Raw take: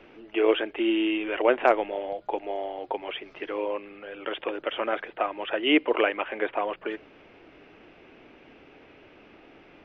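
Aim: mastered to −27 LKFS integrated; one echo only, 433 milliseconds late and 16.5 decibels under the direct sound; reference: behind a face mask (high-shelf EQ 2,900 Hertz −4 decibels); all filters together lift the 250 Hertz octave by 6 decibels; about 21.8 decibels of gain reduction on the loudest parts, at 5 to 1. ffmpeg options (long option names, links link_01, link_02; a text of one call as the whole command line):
ffmpeg -i in.wav -af "equalizer=frequency=250:width_type=o:gain=9,acompressor=threshold=-37dB:ratio=5,highshelf=frequency=2900:gain=-4,aecho=1:1:433:0.15,volume=14.5dB" out.wav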